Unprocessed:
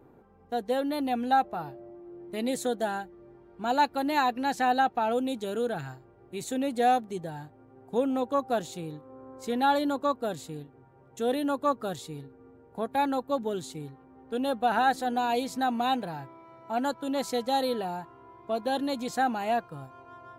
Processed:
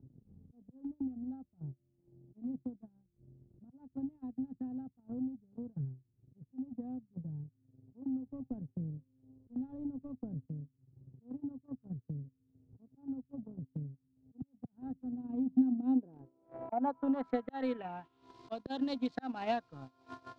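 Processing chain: local Wiener filter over 9 samples; peaking EQ 260 Hz +10 dB 0.21 oct; word length cut 10-bit, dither none; dynamic bell 370 Hz, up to -5 dB, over -49 dBFS, Q 7.7; slow attack 236 ms; 8.25–10.46 s: waveshaping leveller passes 1; upward compressor, threshold -36 dBFS; low-pass sweep 130 Hz -> 4.4 kHz, 15.08–18.39 s; gate -41 dBFS, range -11 dB; transient shaper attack +9 dB, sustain -10 dB; three bands compressed up and down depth 40%; trim -7.5 dB

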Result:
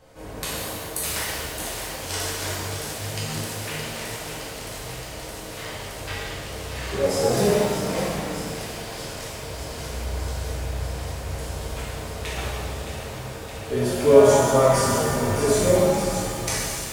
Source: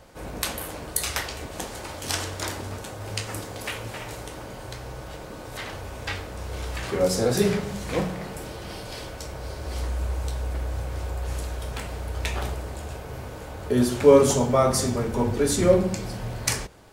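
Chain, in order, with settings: on a send: feedback echo behind a high-pass 618 ms, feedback 81%, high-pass 1.7 kHz, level -7.5 dB; on the sum: pitch-shifted reverb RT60 1.8 s, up +7 st, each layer -8 dB, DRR -6.5 dB; trim -6.5 dB

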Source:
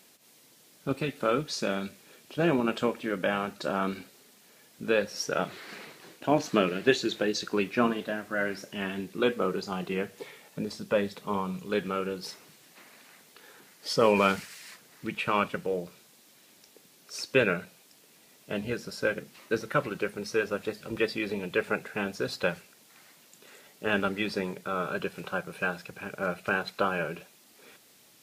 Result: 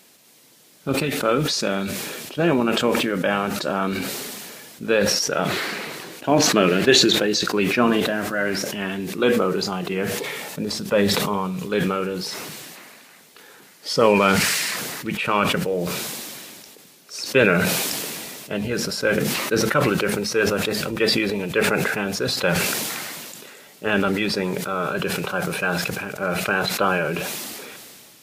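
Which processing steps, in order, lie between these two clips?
decay stretcher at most 24 dB/s; trim +5.5 dB

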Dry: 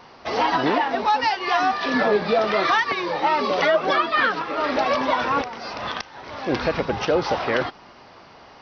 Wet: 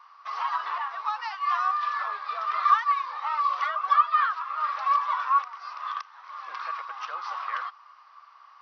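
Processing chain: ladder high-pass 1.1 kHz, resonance 85%; trim -2 dB

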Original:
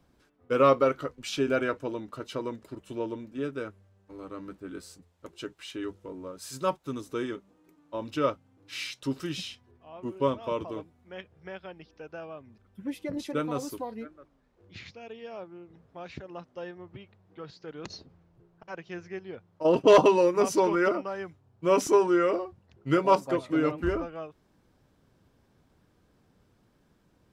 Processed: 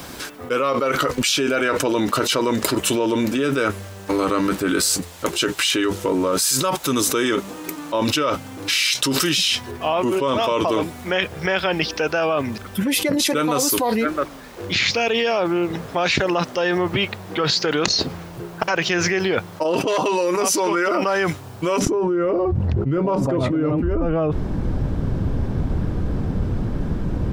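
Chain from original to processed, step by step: tilt EQ +2.5 dB/octave, from 21.78 s -3.5 dB/octave; level flattener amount 100%; trim -7 dB

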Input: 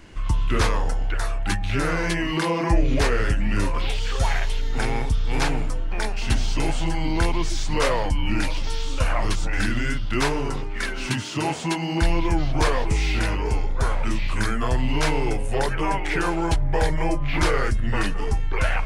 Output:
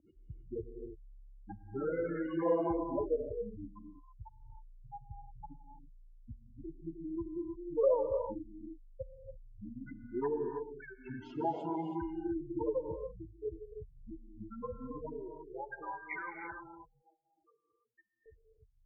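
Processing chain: spectral gate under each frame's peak -10 dB strong; band-pass sweep 580 Hz -> 2.8 kHz, 14.84–15.99 s; 16.68–18.26 s: differentiator; gated-style reverb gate 350 ms rising, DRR 4.5 dB

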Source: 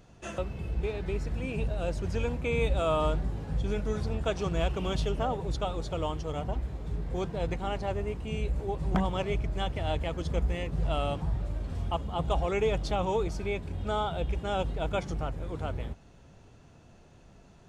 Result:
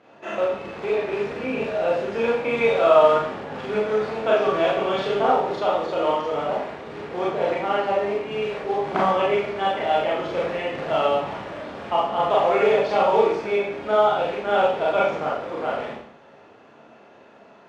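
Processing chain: short-mantissa float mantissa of 2-bit; band-pass 390–2300 Hz; Schroeder reverb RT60 0.61 s, combs from 27 ms, DRR -5.5 dB; trim +7 dB

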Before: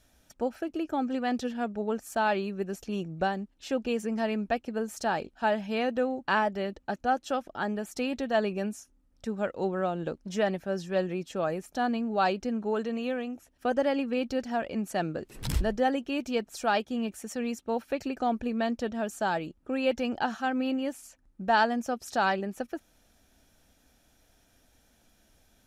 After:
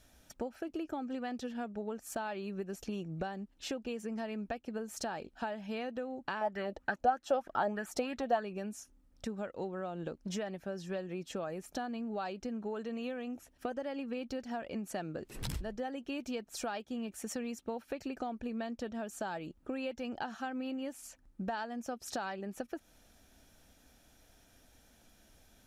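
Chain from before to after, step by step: compression 12:1, threshold -36 dBFS, peak gain reduction 17.5 dB; 6.41–8.43 s: sweeping bell 3.2 Hz 570–1800 Hz +14 dB; trim +1 dB

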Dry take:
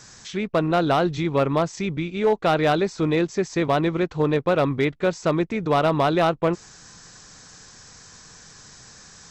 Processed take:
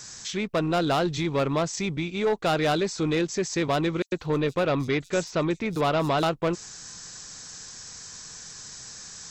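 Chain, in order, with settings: treble shelf 3.5 kHz +10.5 dB; saturation -15.5 dBFS, distortion -16 dB; 4.02–6.23 s: bands offset in time highs, lows 100 ms, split 5.8 kHz; trim -2 dB

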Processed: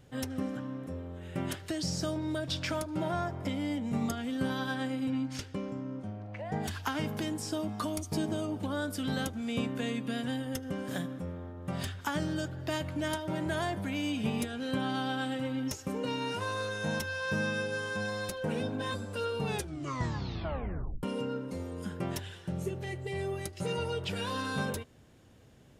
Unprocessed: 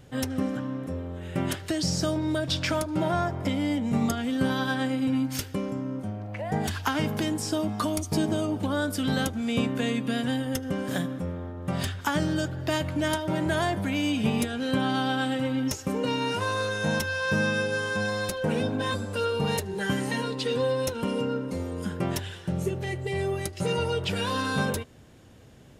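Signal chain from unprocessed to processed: 5.10–6.63 s: low-pass 6.8 kHz 12 dB/octave; 19.41 s: tape stop 1.62 s; trim -6.5 dB

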